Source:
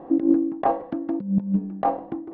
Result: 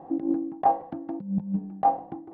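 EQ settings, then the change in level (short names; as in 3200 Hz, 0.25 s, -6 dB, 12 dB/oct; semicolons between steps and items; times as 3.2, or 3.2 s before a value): thirty-one-band EQ 100 Hz +8 dB, 160 Hz +8 dB, 800 Hz +11 dB; -8.0 dB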